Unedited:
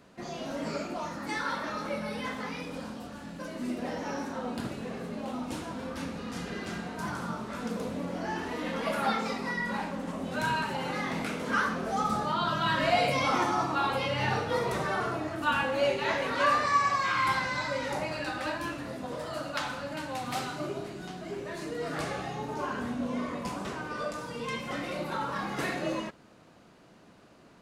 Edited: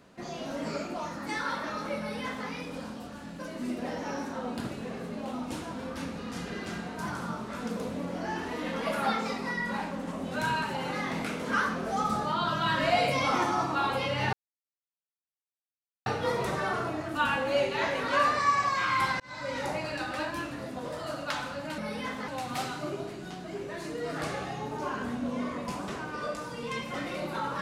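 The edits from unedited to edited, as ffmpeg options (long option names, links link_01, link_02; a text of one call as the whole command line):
ffmpeg -i in.wav -filter_complex "[0:a]asplit=5[link_01][link_02][link_03][link_04][link_05];[link_01]atrim=end=14.33,asetpts=PTS-STARTPTS,afade=type=out:start_time=14.326:duration=0.004:curve=hsin,apad=pad_dur=1.73[link_06];[link_02]atrim=start=14.33:end=17.47,asetpts=PTS-STARTPTS,afade=type=in:duration=0.004:curve=hsin,afade=type=out:start_time=3.136:duration=0.004:curve=hsin[link_07];[link_03]atrim=start=17.47:end=20.052,asetpts=PTS-STARTPTS,afade=type=in:duration=0.38[link_08];[link_04]atrim=start=1.978:end=2.482[link_09];[link_05]atrim=start=20.048[link_10];[link_06][link_07][link_08]concat=n=3:v=0:a=1[link_11];[link_11][link_09]acrossfade=duration=0.004:curve1=hsin:curve2=hsin[link_12];[link_12][link_10]acrossfade=duration=0.004:curve1=hsin:curve2=hsin" out.wav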